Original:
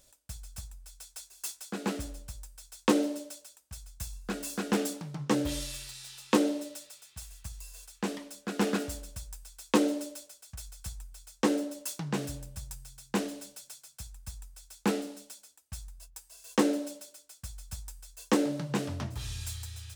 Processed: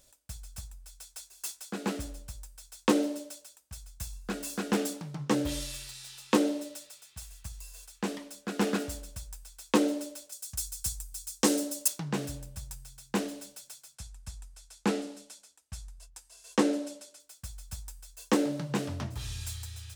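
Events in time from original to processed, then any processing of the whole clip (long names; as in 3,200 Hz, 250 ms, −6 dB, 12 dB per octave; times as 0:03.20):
0:10.32–0:11.88: bass and treble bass +1 dB, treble +13 dB
0:13.95–0:17.20: low-pass filter 10,000 Hz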